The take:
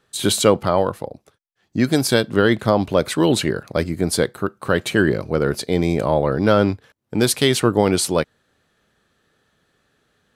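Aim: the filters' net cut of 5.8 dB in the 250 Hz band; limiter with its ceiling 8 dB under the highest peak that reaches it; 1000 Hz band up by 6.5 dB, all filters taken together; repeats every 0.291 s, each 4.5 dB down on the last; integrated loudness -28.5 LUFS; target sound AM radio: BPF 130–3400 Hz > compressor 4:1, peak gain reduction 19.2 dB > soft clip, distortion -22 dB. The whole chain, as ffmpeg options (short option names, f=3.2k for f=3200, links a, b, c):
-af "equalizer=f=250:t=o:g=-8.5,equalizer=f=1k:t=o:g=9,alimiter=limit=-7dB:level=0:latency=1,highpass=130,lowpass=3.4k,aecho=1:1:291|582|873|1164|1455|1746|2037|2328|2619:0.596|0.357|0.214|0.129|0.0772|0.0463|0.0278|0.0167|0.01,acompressor=threshold=-35dB:ratio=4,asoftclip=threshold=-23dB,volume=8.5dB"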